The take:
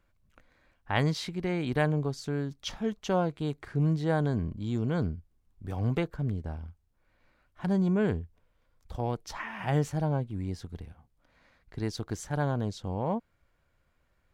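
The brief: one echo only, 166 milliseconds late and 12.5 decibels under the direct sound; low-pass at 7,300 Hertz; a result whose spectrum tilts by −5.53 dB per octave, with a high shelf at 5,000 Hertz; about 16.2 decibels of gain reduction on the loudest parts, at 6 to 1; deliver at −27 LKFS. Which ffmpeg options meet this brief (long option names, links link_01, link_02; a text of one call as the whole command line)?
ffmpeg -i in.wav -af "lowpass=7300,highshelf=frequency=5000:gain=6,acompressor=threshold=-40dB:ratio=6,aecho=1:1:166:0.237,volume=17.5dB" out.wav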